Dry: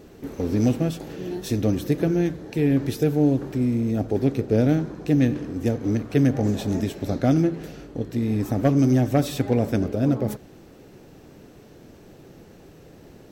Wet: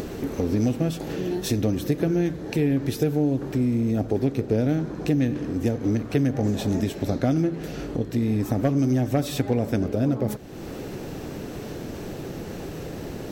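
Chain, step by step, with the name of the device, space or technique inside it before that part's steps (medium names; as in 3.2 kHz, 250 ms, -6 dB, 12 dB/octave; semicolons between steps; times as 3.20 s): upward and downward compression (upward compressor, threshold -25 dBFS; compression 3:1, threshold -22 dBFS, peak gain reduction 6.5 dB); trim +2.5 dB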